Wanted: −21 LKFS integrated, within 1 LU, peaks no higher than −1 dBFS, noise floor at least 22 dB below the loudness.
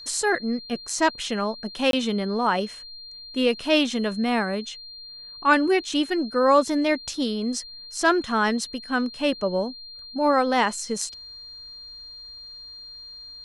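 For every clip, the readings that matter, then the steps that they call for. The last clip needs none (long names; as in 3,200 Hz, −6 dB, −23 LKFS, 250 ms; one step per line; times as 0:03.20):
number of dropouts 1; longest dropout 22 ms; interfering tone 4,200 Hz; level of the tone −39 dBFS; integrated loudness −24.0 LKFS; sample peak −5.5 dBFS; target loudness −21.0 LKFS
→ repair the gap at 0:01.91, 22 ms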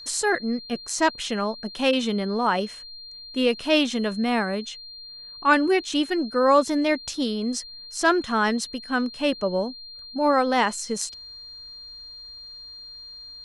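number of dropouts 0; interfering tone 4,200 Hz; level of the tone −39 dBFS
→ notch filter 4,200 Hz, Q 30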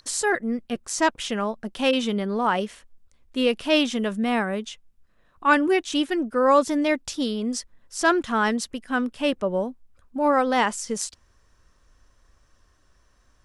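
interfering tone none found; integrated loudness −24.0 LKFS; sample peak −5.5 dBFS; target loudness −21.0 LKFS
→ level +3 dB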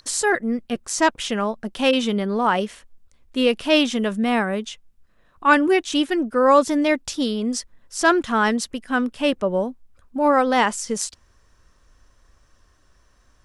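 integrated loudness −21.0 LKFS; sample peak −2.5 dBFS; background noise floor −59 dBFS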